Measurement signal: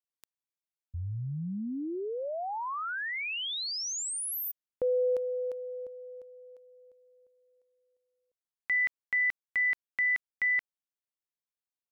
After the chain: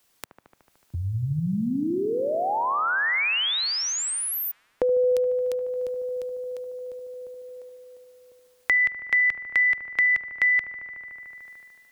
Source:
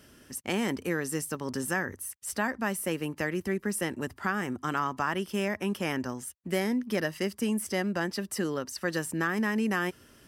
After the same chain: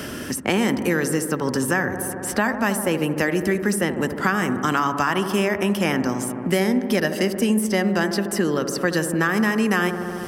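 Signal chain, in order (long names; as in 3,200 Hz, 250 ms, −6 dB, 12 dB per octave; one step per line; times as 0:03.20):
on a send: delay with a low-pass on its return 74 ms, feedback 75%, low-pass 1,200 Hz, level −9 dB
on the sum: multiband upward and downward compressor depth 70%
level +8 dB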